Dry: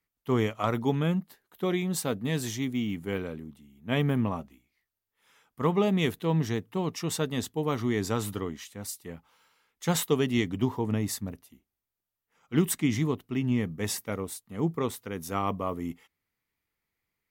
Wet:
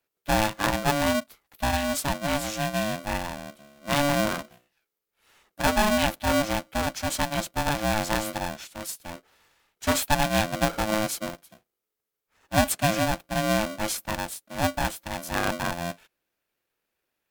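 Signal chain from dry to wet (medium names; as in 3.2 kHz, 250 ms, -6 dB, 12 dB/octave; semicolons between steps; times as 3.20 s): polarity switched at an audio rate 430 Hz; trim +2.5 dB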